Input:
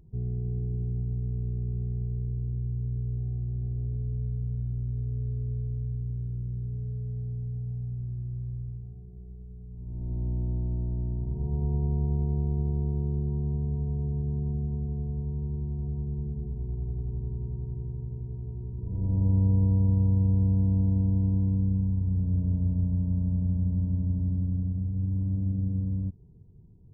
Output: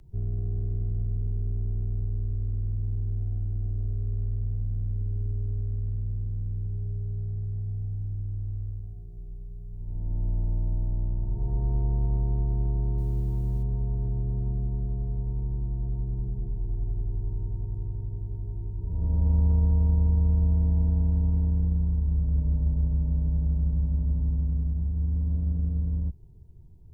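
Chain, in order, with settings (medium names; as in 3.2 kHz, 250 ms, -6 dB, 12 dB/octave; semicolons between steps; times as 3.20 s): peaking EQ 260 Hz -9.5 dB 2.6 oct; frequency shift -20 Hz; in parallel at -9 dB: overload inside the chain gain 35.5 dB; 12.98–13.63 s: on the sum: word length cut 12-bit, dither triangular; trim +5 dB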